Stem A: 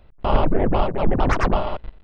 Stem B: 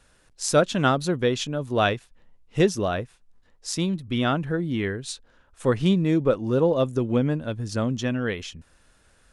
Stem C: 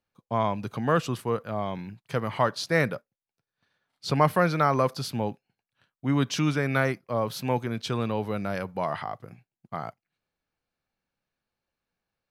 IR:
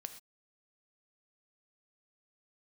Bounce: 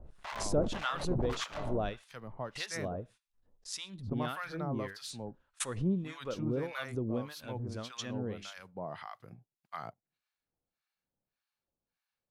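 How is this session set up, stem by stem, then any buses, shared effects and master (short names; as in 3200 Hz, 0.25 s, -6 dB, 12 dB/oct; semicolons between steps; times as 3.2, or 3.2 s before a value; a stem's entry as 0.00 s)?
-4.0 dB, 0.00 s, no send, soft clip -24.5 dBFS, distortion -6 dB; sample leveller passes 1; compressor, threshold -27 dBFS, peak gain reduction 2.5 dB
-12.0 dB, 0.00 s, send -7.5 dB, gate -47 dBFS, range -38 dB; backwards sustainer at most 70 dB/s
-2.0 dB, 0.00 s, no send, auto duck -10 dB, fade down 0.20 s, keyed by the second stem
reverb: on, pre-delay 3 ms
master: bell 4000 Hz +2 dB; harmonic tremolo 1.7 Hz, depth 100%, crossover 900 Hz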